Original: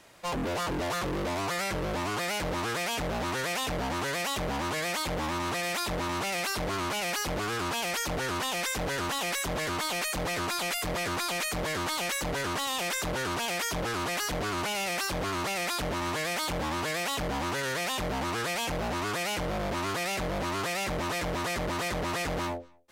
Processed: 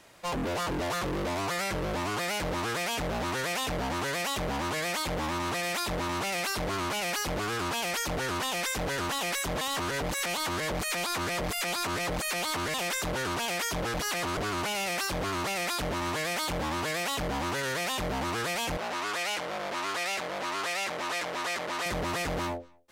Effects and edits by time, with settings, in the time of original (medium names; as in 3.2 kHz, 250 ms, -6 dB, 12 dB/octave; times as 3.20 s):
9.61–12.74 s: reverse
13.94–14.37 s: reverse
18.77–21.86 s: frequency weighting A